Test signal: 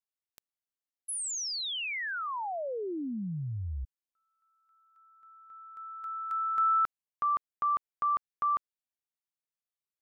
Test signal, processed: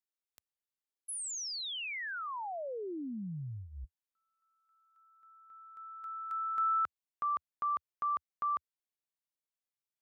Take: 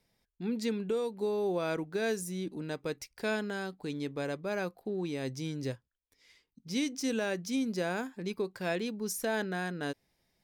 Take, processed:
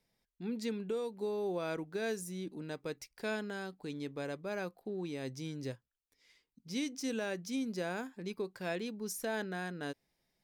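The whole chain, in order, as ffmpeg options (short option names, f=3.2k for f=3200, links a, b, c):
-af "equalizer=f=83:t=o:w=0.29:g=-13,volume=-4.5dB"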